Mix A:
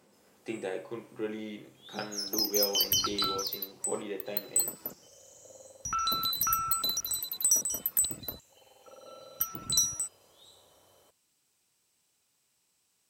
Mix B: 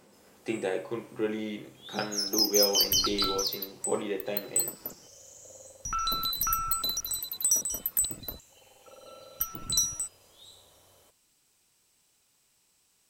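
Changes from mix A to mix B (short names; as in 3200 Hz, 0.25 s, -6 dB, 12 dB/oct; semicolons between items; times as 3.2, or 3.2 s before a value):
speech +5.0 dB; first sound +5.0 dB; master: remove HPF 73 Hz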